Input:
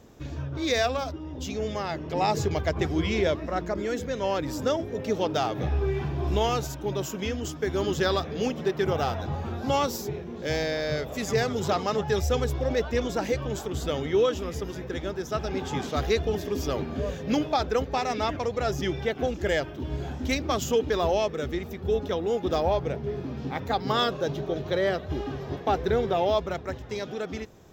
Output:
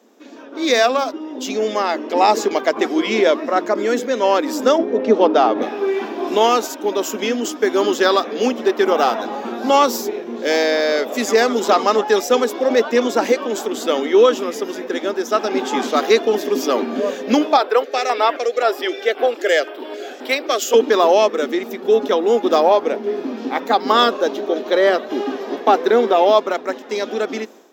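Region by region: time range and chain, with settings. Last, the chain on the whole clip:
0:04.78–0:05.62: low-pass filter 5,000 Hz + tilt shelving filter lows +4.5 dB, about 1,300 Hz
0:17.57–0:20.74: high-pass filter 390 Hz 24 dB per octave + auto-filter notch square 1.9 Hz 950–6,400 Hz
whole clip: elliptic high-pass filter 230 Hz, stop band 40 dB; dynamic equaliser 1,100 Hz, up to +4 dB, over −40 dBFS, Q 2.2; automatic gain control gain up to 11 dB; level +1 dB

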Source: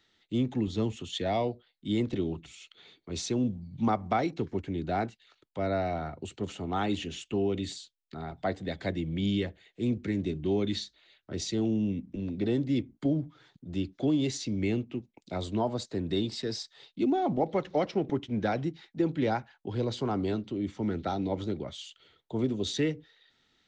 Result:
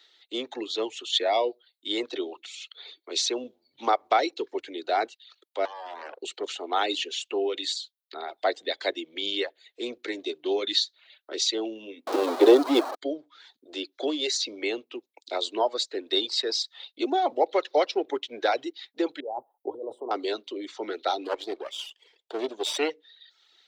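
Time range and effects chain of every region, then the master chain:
0:05.65–0:06.20: downward compressor, threshold −37 dBFS + highs frequency-modulated by the lows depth 0.73 ms
0:12.07–0:12.95: converter with a step at zero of −33.5 dBFS + flat-topped bell 580 Hz +11.5 dB 2.7 octaves
0:19.20–0:20.11: compressor whose output falls as the input rises −34 dBFS + inverse Chebyshev band-stop filter 1,500–6,900 Hz
0:21.24–0:22.90: lower of the sound and its delayed copy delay 0.36 ms + high-shelf EQ 7,900 Hz −7.5 dB
whole clip: reverb reduction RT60 0.7 s; inverse Chebyshev high-pass filter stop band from 190 Hz, stop band 40 dB; parametric band 4,000 Hz +8 dB 0.67 octaves; level +6.5 dB

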